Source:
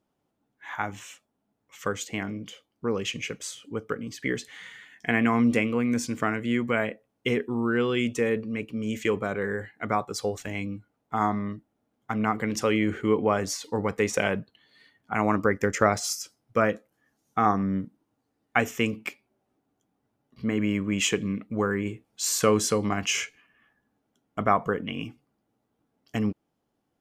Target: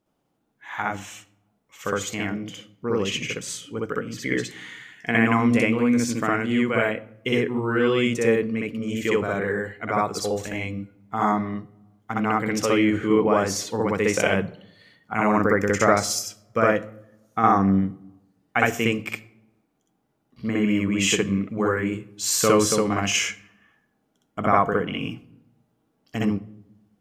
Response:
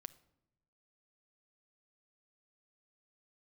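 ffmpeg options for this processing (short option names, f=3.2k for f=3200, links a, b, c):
-filter_complex "[0:a]asplit=2[a][b];[1:a]atrim=start_sample=2205,adelay=62[c];[b][c]afir=irnorm=-1:irlink=0,volume=8dB[d];[a][d]amix=inputs=2:normalize=0"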